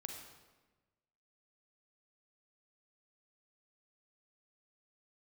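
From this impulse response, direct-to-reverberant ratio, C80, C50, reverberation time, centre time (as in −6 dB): 2.0 dB, 5.5 dB, 3.5 dB, 1.2 s, 46 ms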